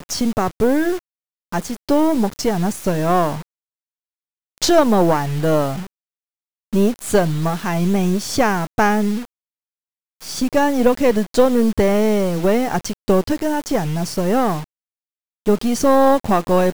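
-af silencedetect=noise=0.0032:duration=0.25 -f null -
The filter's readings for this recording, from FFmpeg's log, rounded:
silence_start: 0.99
silence_end: 1.52 | silence_duration: 0.53
silence_start: 3.42
silence_end: 4.58 | silence_duration: 1.15
silence_start: 5.87
silence_end: 6.73 | silence_duration: 0.86
silence_start: 9.25
silence_end: 10.21 | silence_duration: 0.96
silence_start: 14.64
silence_end: 15.46 | silence_duration: 0.82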